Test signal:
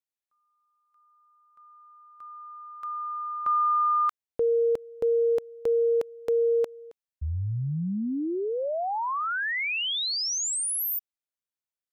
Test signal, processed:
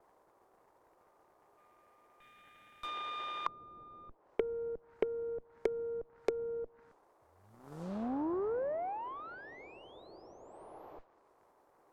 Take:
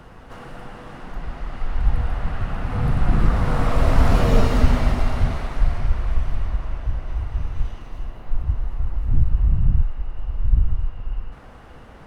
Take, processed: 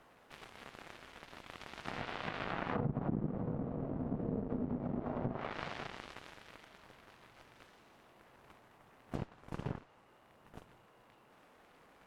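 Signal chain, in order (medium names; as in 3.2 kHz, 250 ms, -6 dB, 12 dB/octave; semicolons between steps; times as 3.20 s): Bessel high-pass 230 Hz, order 8; band noise 320–1100 Hz -52 dBFS; compression 16:1, threshold -28 dBFS; Chebyshev shaper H 3 -42 dB, 7 -16 dB, 8 -30 dB, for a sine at -19 dBFS; modulation noise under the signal 17 dB; low-pass that closes with the level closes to 320 Hz, closed at -29.5 dBFS; trim +2 dB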